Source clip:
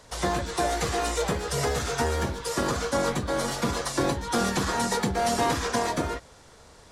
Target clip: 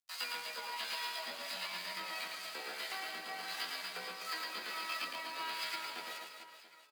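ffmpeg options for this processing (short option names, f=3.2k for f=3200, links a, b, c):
-filter_complex "[0:a]afftfilt=real='re*between(b*sr/4096,110,3700)':imag='im*between(b*sr/4096,110,3700)':win_size=4096:overlap=0.75,adynamicequalizer=threshold=0.00447:dfrequency=140:dqfactor=6.3:tfrequency=140:tqfactor=6.3:attack=5:release=100:ratio=0.375:range=2:mode=boostabove:tftype=bell,aeval=exprs='sgn(val(0))*max(abs(val(0))-0.00531,0)':c=same,acompressor=threshold=-30dB:ratio=4,flanger=delay=15.5:depth=3.1:speed=0.53,acrossover=split=620[a][b];[a]aeval=exprs='val(0)*(1-0.5/2+0.5/2*cos(2*PI*1.5*n/s))':c=same[c];[b]aeval=exprs='val(0)*(1-0.5/2-0.5/2*cos(2*PI*1.5*n/s))':c=same[d];[c][d]amix=inputs=2:normalize=0,aderivative,asetrate=60591,aresample=44100,atempo=0.727827,aecho=1:1:110|253|438.9|680.6|994.7:0.631|0.398|0.251|0.158|0.1,volume=12.5dB"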